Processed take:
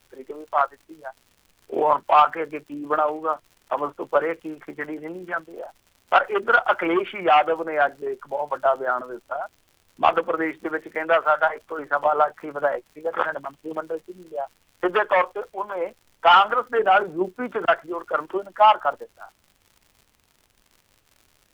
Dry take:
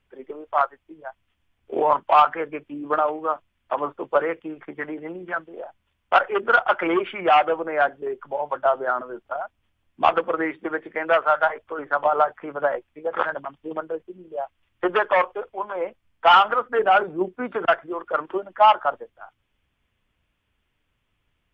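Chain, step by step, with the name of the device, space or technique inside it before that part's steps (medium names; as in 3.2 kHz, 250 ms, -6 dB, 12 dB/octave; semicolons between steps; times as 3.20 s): vinyl LP (crackle 120 per s -41 dBFS; pink noise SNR 44 dB)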